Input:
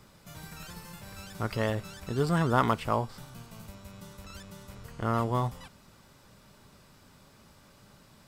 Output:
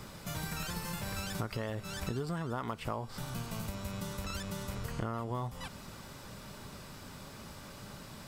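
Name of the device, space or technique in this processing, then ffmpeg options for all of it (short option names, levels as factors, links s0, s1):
serial compression, leveller first: -af "acompressor=threshold=0.0316:ratio=2.5,acompressor=threshold=0.00708:ratio=5,volume=2.82"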